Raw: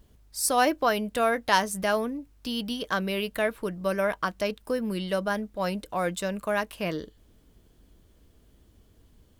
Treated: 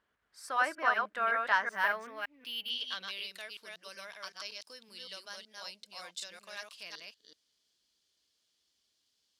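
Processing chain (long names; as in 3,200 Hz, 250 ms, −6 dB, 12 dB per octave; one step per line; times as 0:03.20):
delay that plays each chunk backwards 188 ms, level −2.5 dB
band-pass filter sweep 1,500 Hz → 4,800 Hz, 0:01.73–0:03.36
0:01.71–0:02.70: linearly interpolated sample-rate reduction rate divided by 3×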